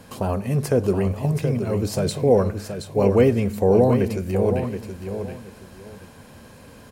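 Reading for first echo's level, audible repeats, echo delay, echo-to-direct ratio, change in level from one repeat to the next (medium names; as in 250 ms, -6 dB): -8.0 dB, 2, 724 ms, -7.5 dB, -12.0 dB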